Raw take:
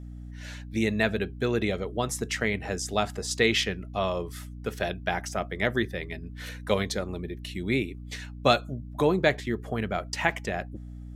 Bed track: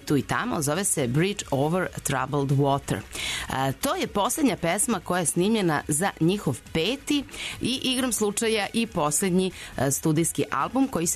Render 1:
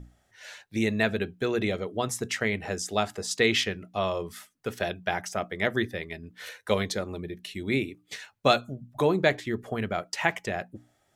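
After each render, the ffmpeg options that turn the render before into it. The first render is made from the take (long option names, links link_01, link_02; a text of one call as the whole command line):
ffmpeg -i in.wav -af "bandreject=frequency=60:width_type=h:width=6,bandreject=frequency=120:width_type=h:width=6,bandreject=frequency=180:width_type=h:width=6,bandreject=frequency=240:width_type=h:width=6,bandreject=frequency=300:width_type=h:width=6" out.wav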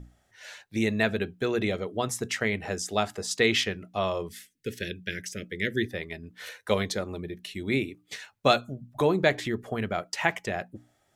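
ffmpeg -i in.wav -filter_complex "[0:a]asplit=3[link_01][link_02][link_03];[link_01]afade=type=out:start_time=4.28:duration=0.02[link_04];[link_02]asuperstop=centerf=900:order=8:qfactor=0.76,afade=type=in:start_time=4.28:duration=0.02,afade=type=out:start_time=5.88:duration=0.02[link_05];[link_03]afade=type=in:start_time=5.88:duration=0.02[link_06];[link_04][link_05][link_06]amix=inputs=3:normalize=0,asettb=1/sr,asplit=3[link_07][link_08][link_09];[link_07]atrim=end=9.014[link_10];[link_08]atrim=start=9.01:end=9.5,asetpts=PTS-STARTPTS,afade=type=in:duration=0.004:curve=qsin,afade=type=out:start_time=0.486:duration=0.004:curve=qsin,acompressor=mode=upward:threshold=-25dB:ratio=2.5:attack=3.2:release=140:knee=2.83:detection=peak[link_11];[link_09]atrim=start=9.496[link_12];[link_10][link_11]acrossfade=duration=0.004:curve1=hsin:curve2=qsin[link_13];[link_13][link_12]acrossfade=duration=0.004:curve1=qsin:curve2=hsin" out.wav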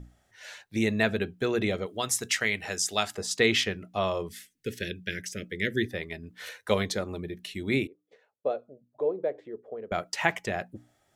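ffmpeg -i in.wav -filter_complex "[0:a]asettb=1/sr,asplit=3[link_01][link_02][link_03];[link_01]atrim=end=1.864[link_04];[link_02]atrim=start=1.86:end=3.15,asetpts=PTS-STARTPTS,afade=type=in:duration=0.004:curve=qsin,afade=type=out:start_time=1.286:duration=0.004:curve=qsin,tiltshelf=frequency=1300:gain=-6.5[link_05];[link_03]atrim=start=3.146[link_06];[link_04][link_05]acrossfade=duration=0.004:curve1=hsin:curve2=qsin[link_07];[link_07][link_06]acrossfade=duration=0.004:curve1=qsin:curve2=hsin,asettb=1/sr,asplit=3[link_08][link_09][link_10];[link_08]atrim=end=7.874[link_11];[link_09]atrim=start=7.87:end=9.92,asetpts=PTS-STARTPTS,afade=type=in:duration=0.004:curve=qsin,afade=type=out:start_time=2.046:duration=0.004:curve=qsin,bandpass=frequency=490:width_type=q:width=4.4[link_12];[link_10]atrim=start=9.916[link_13];[link_11][link_12]acrossfade=duration=0.004:curve1=hsin:curve2=qsin[link_14];[link_14][link_13]acrossfade=duration=0.004:curve1=qsin:curve2=hsin" out.wav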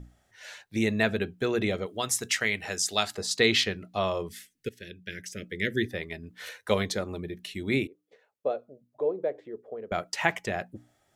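ffmpeg -i in.wav -filter_complex "[0:a]asettb=1/sr,asplit=3[link_01][link_02][link_03];[link_01]atrim=end=2.834[link_04];[link_02]atrim=start=2.83:end=4.02,asetpts=PTS-STARTPTS,afade=type=in:duration=0.004:curve=qsin,afade=type=out:start_time=1.186:duration=0.004:curve=qsin,equalizer=frequency=4200:width_type=o:width=0.3:gain=7.5[link_05];[link_03]atrim=start=4.016[link_06];[link_04][link_05]acrossfade=duration=0.004:curve1=hsin:curve2=qsin[link_07];[link_07][link_06]acrossfade=duration=0.004:curve1=qsin:curve2=hsin,asplit=2[link_08][link_09];[link_08]atrim=end=4.69,asetpts=PTS-STARTPTS,afade=type=out:start_time=4.686:duration=0.004:curve=hsin:silence=0.177828[link_10];[link_09]atrim=start=4.69,asetpts=PTS-STARTPTS,afade=type=in:duration=0.92:silence=0.177828[link_11];[link_10][link_11]concat=n=2:v=0:a=1" out.wav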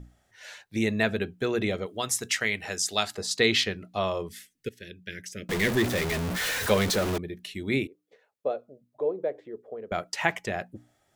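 ffmpeg -i in.wav -filter_complex "[0:a]asettb=1/sr,asplit=3[link_01][link_02][link_03];[link_01]atrim=end=5.494[link_04];[link_02]atrim=start=5.49:end=7.18,asetpts=PTS-STARTPTS,afade=type=in:duration=0.004:curve=qsin,afade=type=out:start_time=1.686:duration=0.004:curve=qsin,aeval=exprs='val(0)+0.5*0.0596*sgn(val(0))':channel_layout=same[link_05];[link_03]atrim=start=7.176[link_06];[link_04][link_05]acrossfade=duration=0.004:curve1=hsin:curve2=qsin[link_07];[link_07][link_06]acrossfade=duration=0.004:curve1=qsin:curve2=hsin" out.wav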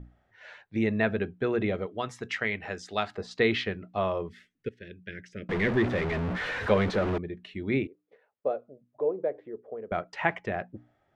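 ffmpeg -i in.wav -af "lowpass=2100" out.wav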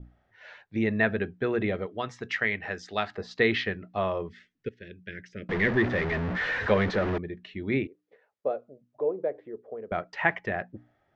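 ffmpeg -i in.wav -af "adynamicequalizer=threshold=0.00562:dfrequency=1800:dqfactor=4.3:tfrequency=1800:tqfactor=4.3:attack=5:release=100:ratio=0.375:range=3:mode=boostabove:tftype=bell,lowpass=frequency=6400:width=0.5412,lowpass=frequency=6400:width=1.3066" out.wav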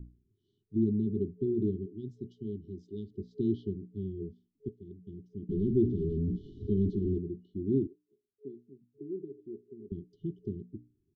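ffmpeg -i in.wav -af "afftfilt=real='re*(1-between(b*sr/4096,420,2900))':imag='im*(1-between(b*sr/4096,420,2900))':win_size=4096:overlap=0.75,firequalizer=gain_entry='entry(330,0);entry(1100,-9);entry(2200,-27)':delay=0.05:min_phase=1" out.wav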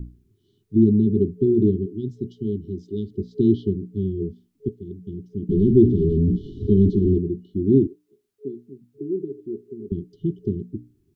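ffmpeg -i in.wav -af "volume=12dB" out.wav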